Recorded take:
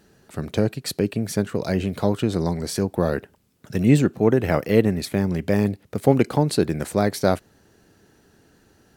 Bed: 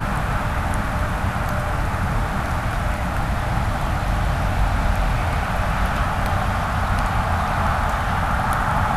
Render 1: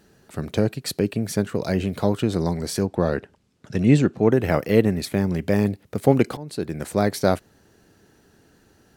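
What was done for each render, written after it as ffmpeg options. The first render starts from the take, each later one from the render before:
-filter_complex "[0:a]asettb=1/sr,asplit=3[a][b][c];[a]atrim=end=2.864[d];[b]atrim=start=2.86:end=4.32,asetpts=PTS-STARTPTS,afade=t=in:d=0.004:c=qsin,afade=t=out:st=1.456:d=0.004:c=qsin,lowpass=7.1k[e];[c]atrim=start=4.316[f];[d][e]acrossfade=d=0.004:c1=hsin:c2=qsin[g];[g][f]acrossfade=d=0.004:c1=qsin:c2=hsin,asplit=2[h][i];[h]atrim=end=6.37,asetpts=PTS-STARTPTS,afade=t=out:st=6.366:d=0.004:c=hsin:silence=0.0794328[j];[i]atrim=start=6.37,asetpts=PTS-STARTPTS,afade=t=in:d=0.65:silence=0.0794328[k];[j][k]concat=n=2:v=0:a=1"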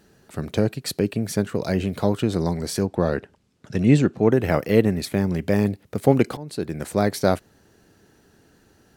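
-af anull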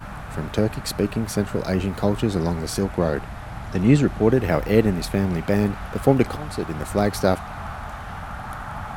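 -filter_complex "[1:a]volume=-12.5dB[a];[0:a][a]amix=inputs=2:normalize=0"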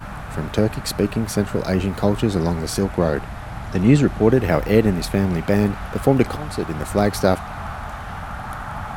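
-af "volume=2.5dB,alimiter=limit=-2dB:level=0:latency=1"

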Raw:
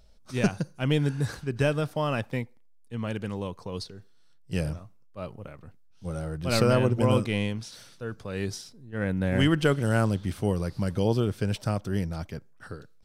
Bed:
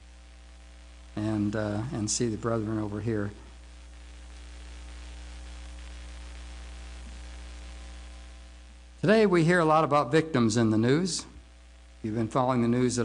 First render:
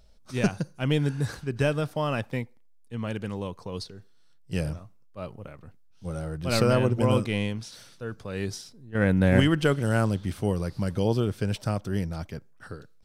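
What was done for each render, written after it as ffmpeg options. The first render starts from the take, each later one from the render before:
-filter_complex "[0:a]asplit=3[a][b][c];[a]atrim=end=8.952[d];[b]atrim=start=8.948:end=9.402,asetpts=PTS-STARTPTS,volume=6dB[e];[c]atrim=start=9.398[f];[d][e]acrossfade=d=0.004:c1=hsin:c2=hsin[g];[g][f]acrossfade=d=0.004:c1=hsin:c2=hsin"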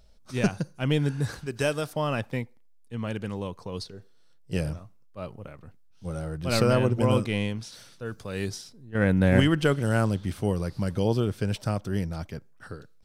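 -filter_complex "[0:a]asettb=1/sr,asplit=3[a][b][c];[a]atrim=end=1.464[d];[b]atrim=start=1.46:end=1.93,asetpts=PTS-STARTPTS,afade=t=in:d=0.004:c=qsin,afade=t=out:st=0.466:d=0.004:c=qsin,bass=f=250:g=-7,treble=f=4k:g=8[e];[c]atrim=start=1.926[f];[d][e]acrossfade=d=0.004:c1=hsin:c2=qsin[g];[g][f]acrossfade=d=0.004:c1=qsin:c2=hsin,asettb=1/sr,asplit=3[h][i][j];[h]atrim=end=3.934[k];[i]atrim=start=3.93:end=4.57,asetpts=PTS-STARTPTS,afade=t=in:d=0.004:c=qsin,afade=t=out:st=0.636:d=0.004:c=qsin,equalizer=f=500:w=1.5:g=6.5[l];[j]atrim=start=4.566[m];[k][l]acrossfade=d=0.004:c1=hsin:c2=qsin[n];[n][m]acrossfade=d=0.004:c1=qsin:c2=hsin,asettb=1/sr,asplit=3[o][p][q];[o]atrim=end=8.054[r];[p]atrim=start=8.05:end=8.49,asetpts=PTS-STARTPTS,afade=t=in:d=0.004:c=qsin,afade=t=out:st=0.436:d=0.004:c=qsin,highshelf=f=5k:g=9[s];[q]atrim=start=8.486[t];[r][s]acrossfade=d=0.004:c1=hsin:c2=qsin[u];[u][t]acrossfade=d=0.004:c1=qsin:c2=hsin"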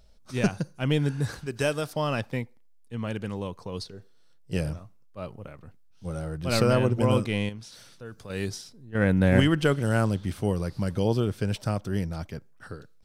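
-filter_complex "[0:a]asettb=1/sr,asplit=3[a][b][c];[a]atrim=end=1.894[d];[b]atrim=start=1.89:end=2.31,asetpts=PTS-STARTPTS,afade=t=in:d=0.004:c=qsin,afade=t=out:st=0.416:d=0.004:c=qsin,equalizer=f=4.8k:w=1.9:g=6.5[e];[c]atrim=start=2.306[f];[d][e]acrossfade=d=0.004:c1=hsin:c2=qsin[g];[g][f]acrossfade=d=0.004:c1=qsin:c2=hsin,asettb=1/sr,asplit=3[h][i][j];[h]atrim=end=7.494[k];[i]atrim=start=7.49:end=8.3,asetpts=PTS-STARTPTS,afade=t=in:d=0.004:c=qsin,afade=t=out:st=0.806:d=0.004:c=qsin,acompressor=threshold=-47dB:ratio=1.5:attack=3.2:release=140:knee=1:detection=peak[l];[j]atrim=start=8.296[m];[k][l]acrossfade=d=0.004:c1=hsin:c2=qsin[n];[n][m]acrossfade=d=0.004:c1=qsin:c2=hsin"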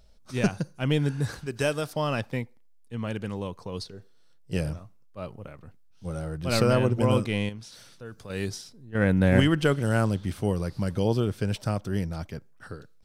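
-af anull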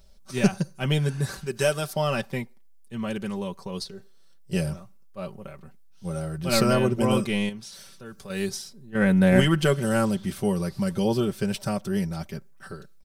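-af "highshelf=f=7.6k:g=8,aecho=1:1:5.2:0.73"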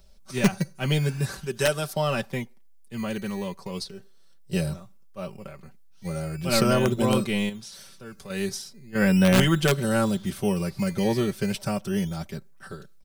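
-filter_complex "[0:a]acrossover=split=300|1300[a][b][c];[a]acrusher=samples=16:mix=1:aa=0.000001:lfo=1:lforange=9.6:lforate=0.38[d];[b]aeval=exprs='(mod(6.31*val(0)+1,2)-1)/6.31':c=same[e];[d][e][c]amix=inputs=3:normalize=0"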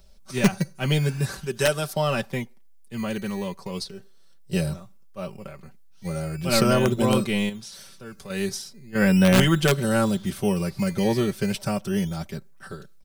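-af "volume=1.5dB"

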